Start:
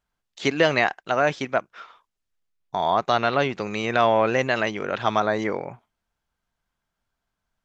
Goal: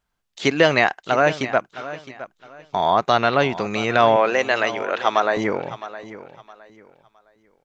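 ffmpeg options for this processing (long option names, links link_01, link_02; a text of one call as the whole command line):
ffmpeg -i in.wav -filter_complex "[0:a]asettb=1/sr,asplit=3[link_01][link_02][link_03];[link_01]atrim=end=4.164[link_04];[link_02]atrim=start=4.16:end=5.37,asetpts=PTS-STARTPTS,afade=type=in:duration=0.004:curve=qsin,afade=type=out:start_time=1.206:duration=0.004:curve=qsin,highpass=380[link_05];[link_03]atrim=start=5.366[link_06];[link_04][link_05]acrossfade=duration=0.004:curve1=hsin:curve2=qsin[link_07];[link_07][link_06]acrossfade=duration=0.004:curve1=qsin:curve2=hsin,aecho=1:1:663|1326|1989:0.178|0.048|0.013,volume=3.5dB" out.wav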